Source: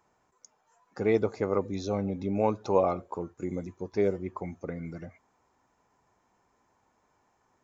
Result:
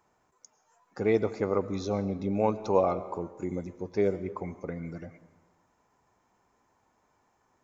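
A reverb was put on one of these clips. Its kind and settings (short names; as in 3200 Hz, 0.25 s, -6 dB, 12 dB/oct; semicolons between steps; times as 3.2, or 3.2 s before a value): digital reverb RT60 1.3 s, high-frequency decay 0.7×, pre-delay 70 ms, DRR 15 dB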